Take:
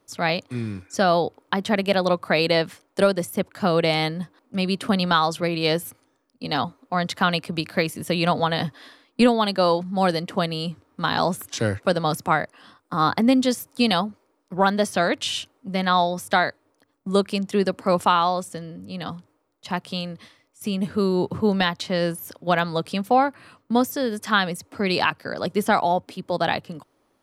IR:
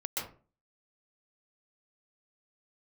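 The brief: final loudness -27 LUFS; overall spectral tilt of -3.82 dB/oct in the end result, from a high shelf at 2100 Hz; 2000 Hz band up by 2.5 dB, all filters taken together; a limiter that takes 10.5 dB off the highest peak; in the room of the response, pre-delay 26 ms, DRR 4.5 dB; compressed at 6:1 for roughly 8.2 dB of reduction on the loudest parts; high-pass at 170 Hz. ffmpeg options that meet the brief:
-filter_complex "[0:a]highpass=170,equalizer=f=2k:t=o:g=8,highshelf=f=2.1k:g=-8.5,acompressor=threshold=-21dB:ratio=6,alimiter=limit=-17dB:level=0:latency=1,asplit=2[a][b];[1:a]atrim=start_sample=2205,adelay=26[c];[b][c]afir=irnorm=-1:irlink=0,volume=-8.5dB[d];[a][d]amix=inputs=2:normalize=0,volume=2dB"

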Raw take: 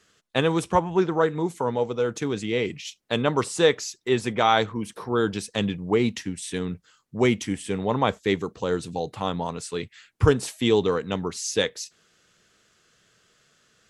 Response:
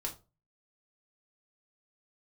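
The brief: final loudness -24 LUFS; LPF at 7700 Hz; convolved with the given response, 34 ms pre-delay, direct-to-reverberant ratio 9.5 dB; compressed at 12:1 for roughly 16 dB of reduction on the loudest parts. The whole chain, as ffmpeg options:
-filter_complex "[0:a]lowpass=7.7k,acompressor=threshold=-29dB:ratio=12,asplit=2[a][b];[1:a]atrim=start_sample=2205,adelay=34[c];[b][c]afir=irnorm=-1:irlink=0,volume=-10dB[d];[a][d]amix=inputs=2:normalize=0,volume=10.5dB"

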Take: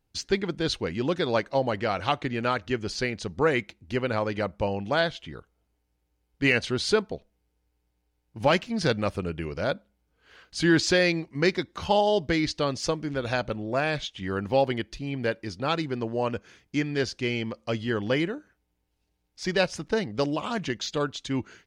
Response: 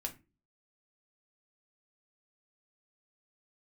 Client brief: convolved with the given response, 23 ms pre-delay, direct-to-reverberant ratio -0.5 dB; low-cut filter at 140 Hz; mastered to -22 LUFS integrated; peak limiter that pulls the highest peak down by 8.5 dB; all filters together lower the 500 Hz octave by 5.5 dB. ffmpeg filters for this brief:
-filter_complex "[0:a]highpass=140,equalizer=f=500:t=o:g=-7,alimiter=limit=-17.5dB:level=0:latency=1,asplit=2[a][b];[1:a]atrim=start_sample=2205,adelay=23[c];[b][c]afir=irnorm=-1:irlink=0,volume=1dB[d];[a][d]amix=inputs=2:normalize=0,volume=6dB"

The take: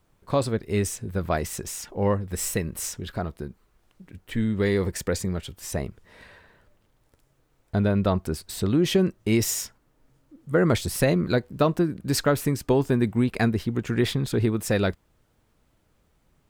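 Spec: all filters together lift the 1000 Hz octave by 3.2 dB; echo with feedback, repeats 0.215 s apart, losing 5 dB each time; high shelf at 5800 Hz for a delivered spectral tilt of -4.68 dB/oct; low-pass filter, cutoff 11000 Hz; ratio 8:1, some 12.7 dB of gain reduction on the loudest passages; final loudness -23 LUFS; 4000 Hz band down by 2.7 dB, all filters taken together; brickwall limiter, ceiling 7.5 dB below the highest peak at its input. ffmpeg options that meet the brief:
-af "lowpass=11k,equalizer=f=1k:t=o:g=4.5,equalizer=f=4k:t=o:g=-5.5,highshelf=f=5.8k:g=4.5,acompressor=threshold=-29dB:ratio=8,alimiter=level_in=1dB:limit=-24dB:level=0:latency=1,volume=-1dB,aecho=1:1:215|430|645|860|1075|1290|1505:0.562|0.315|0.176|0.0988|0.0553|0.031|0.0173,volume=11.5dB"

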